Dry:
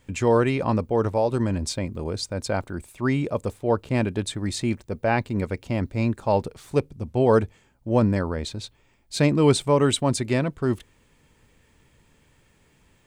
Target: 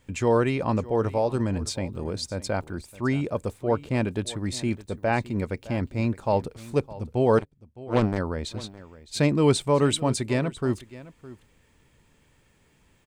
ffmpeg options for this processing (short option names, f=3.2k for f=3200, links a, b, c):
-filter_complex "[0:a]asplit=3[a][b][c];[a]afade=t=out:st=7.37:d=0.02[d];[b]aeval=exprs='0.398*(cos(1*acos(clip(val(0)/0.398,-1,1)))-cos(1*PI/2))+0.0141*(cos(3*acos(clip(val(0)/0.398,-1,1)))-cos(3*PI/2))+0.0501*(cos(7*acos(clip(val(0)/0.398,-1,1)))-cos(7*PI/2))':c=same,afade=t=in:st=7.37:d=0.02,afade=t=out:st=8.17:d=0.02[e];[c]afade=t=in:st=8.17:d=0.02[f];[d][e][f]amix=inputs=3:normalize=0,aecho=1:1:612:0.126,volume=-2dB"